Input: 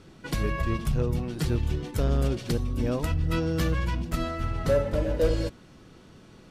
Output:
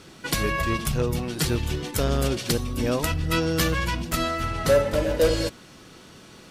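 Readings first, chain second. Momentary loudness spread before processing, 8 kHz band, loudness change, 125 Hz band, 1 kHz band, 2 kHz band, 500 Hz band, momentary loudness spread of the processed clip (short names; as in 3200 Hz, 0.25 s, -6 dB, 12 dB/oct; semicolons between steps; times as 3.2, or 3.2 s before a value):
5 LU, +12.5 dB, +3.5 dB, 0.0 dB, +7.0 dB, +8.5 dB, +4.5 dB, 5 LU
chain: tilt +2 dB/oct; gain +6.5 dB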